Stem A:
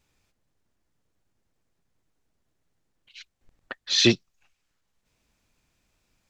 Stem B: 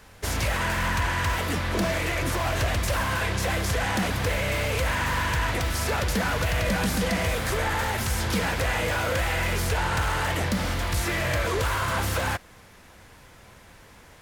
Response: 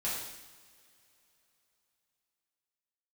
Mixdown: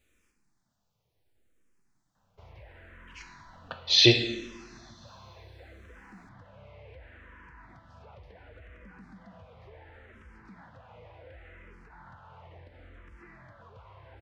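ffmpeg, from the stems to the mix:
-filter_complex "[0:a]volume=-0.5dB,asplit=2[a][b];[b]volume=-6dB[c];[1:a]lowpass=2k,acompressor=threshold=-27dB:ratio=4,adelay=2150,volume=-18.5dB[d];[2:a]atrim=start_sample=2205[e];[c][e]afir=irnorm=-1:irlink=0[f];[a][d][f]amix=inputs=3:normalize=0,asplit=2[g][h];[h]afreqshift=-0.7[i];[g][i]amix=inputs=2:normalize=1"

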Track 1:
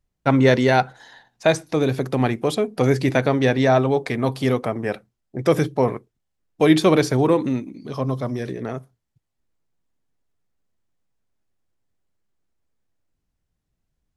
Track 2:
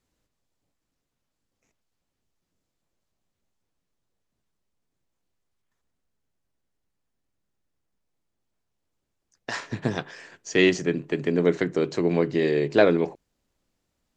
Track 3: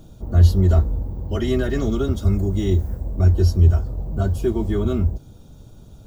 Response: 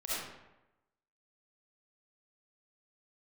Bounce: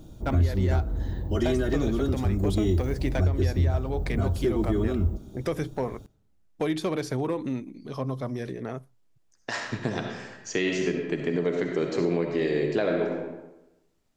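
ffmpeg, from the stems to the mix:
-filter_complex "[0:a]acompressor=threshold=-19dB:ratio=4,volume=13.5dB,asoftclip=hard,volume=-13.5dB,volume=-5.5dB[a];[1:a]volume=-3dB,asplit=2[b][c];[c]volume=-5dB[d];[2:a]equalizer=f=310:t=o:w=0.36:g=6,volume=-3dB,asplit=2[e][f];[f]volume=-20.5dB[g];[3:a]atrim=start_sample=2205[h];[d][g]amix=inputs=2:normalize=0[i];[i][h]afir=irnorm=-1:irlink=0[j];[a][b][e][j]amix=inputs=4:normalize=0,alimiter=limit=-15dB:level=0:latency=1:release=300"

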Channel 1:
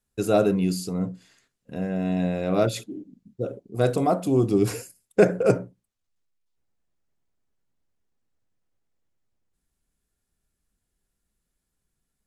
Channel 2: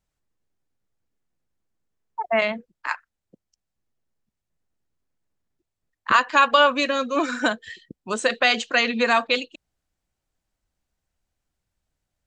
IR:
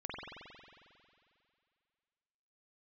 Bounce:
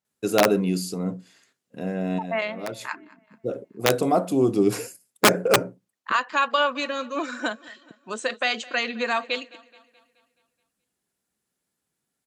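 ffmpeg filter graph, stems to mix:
-filter_complex "[0:a]aeval=exprs='(mod(2.99*val(0)+1,2)-1)/2.99':c=same,adelay=50,volume=1.5dB[a];[1:a]volume=-5.5dB,asplit=3[b][c][d];[c]volume=-22dB[e];[d]apad=whole_len=543148[f];[a][f]sidechaincompress=threshold=-40dB:ratio=6:attack=8.1:release=456[g];[e]aecho=0:1:213|426|639|852|1065|1278|1491:1|0.51|0.26|0.133|0.0677|0.0345|0.0176[h];[g][b][h]amix=inputs=3:normalize=0,highpass=180"

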